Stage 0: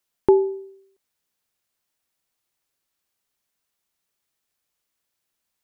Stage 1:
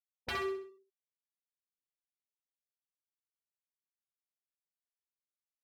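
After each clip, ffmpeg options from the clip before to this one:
-af "afftfilt=real='re*gte(hypot(re,im),0.282)':imag='im*gte(hypot(re,im),0.282)':win_size=1024:overlap=0.75,aeval=exprs='0.0708*(abs(mod(val(0)/0.0708+3,4)-2)-1)':c=same,aecho=1:1:65|130|195|260|325:0.596|0.238|0.0953|0.0381|0.0152,volume=-8.5dB"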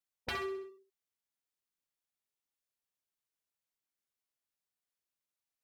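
-af "acompressor=threshold=-37dB:ratio=6,volume=2.5dB"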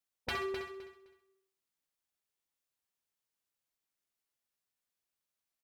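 -af "aecho=1:1:258|516|774:0.376|0.0752|0.015,volume=1dB"

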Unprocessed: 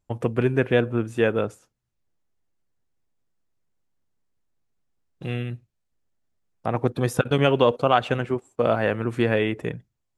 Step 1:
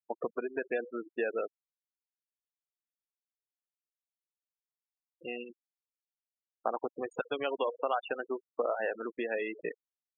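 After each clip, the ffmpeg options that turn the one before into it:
-af "acompressor=threshold=-24dB:ratio=20,highpass=450,afftfilt=real='re*gte(hypot(re,im),0.0316)':imag='im*gte(hypot(re,im),0.0316)':win_size=1024:overlap=0.75"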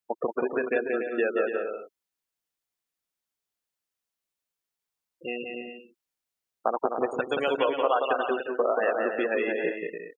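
-af "aecho=1:1:180|288|352.8|391.7|415:0.631|0.398|0.251|0.158|0.1,volume=6dB"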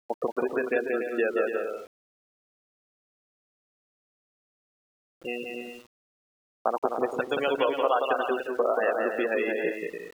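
-af "aeval=exprs='val(0)*gte(abs(val(0)),0.00398)':c=same"

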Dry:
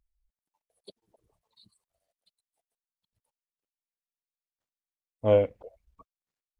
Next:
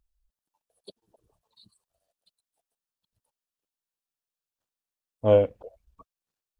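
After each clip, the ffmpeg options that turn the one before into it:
-af "equalizer=f=2.1k:t=o:w=0.26:g=-8,volume=2.5dB"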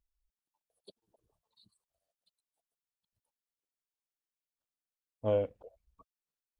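-af "alimiter=limit=-11.5dB:level=0:latency=1:release=117,volume=-8.5dB"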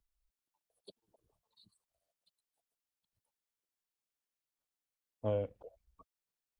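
-filter_complex "[0:a]acrossover=split=170[a][b];[b]acompressor=threshold=-35dB:ratio=2[c];[a][c]amix=inputs=2:normalize=0"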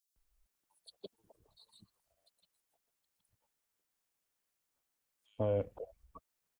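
-filter_complex "[0:a]alimiter=level_in=6.5dB:limit=-24dB:level=0:latency=1,volume=-6.5dB,acrossover=split=3800[a][b];[a]adelay=160[c];[c][b]amix=inputs=2:normalize=0,volume=7.5dB"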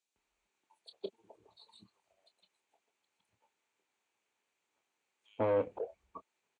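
-filter_complex "[0:a]asoftclip=type=tanh:threshold=-29.5dB,highpass=140,equalizer=f=140:t=q:w=4:g=-7,equalizer=f=390:t=q:w=4:g=6,equalizer=f=880:t=q:w=4:g=6,equalizer=f=2.4k:t=q:w=4:g=7,equalizer=f=5.2k:t=q:w=4:g=-9,lowpass=f=7.2k:w=0.5412,lowpass=f=7.2k:w=1.3066,asplit=2[a][b];[b]adelay=26,volume=-11dB[c];[a][c]amix=inputs=2:normalize=0,volume=4.5dB"

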